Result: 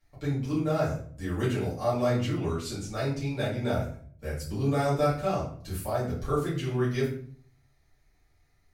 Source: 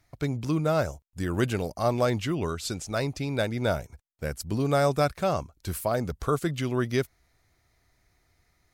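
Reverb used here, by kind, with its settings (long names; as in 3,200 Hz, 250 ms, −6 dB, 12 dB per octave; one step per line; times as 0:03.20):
rectangular room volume 58 cubic metres, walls mixed, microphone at 2.3 metres
level −14 dB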